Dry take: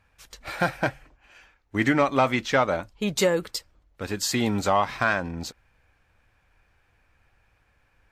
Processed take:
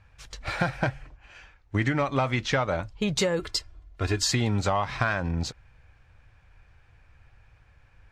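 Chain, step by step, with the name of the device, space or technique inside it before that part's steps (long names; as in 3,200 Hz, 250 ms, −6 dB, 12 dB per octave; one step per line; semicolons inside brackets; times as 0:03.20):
jukebox (low-pass filter 7,300 Hz 12 dB per octave; low shelf with overshoot 170 Hz +6.5 dB, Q 1.5; downward compressor 5 to 1, threshold −25 dBFS, peak gain reduction 9 dB)
0:03.39–0:04.31: comb filter 2.9 ms, depth 68%
level +3 dB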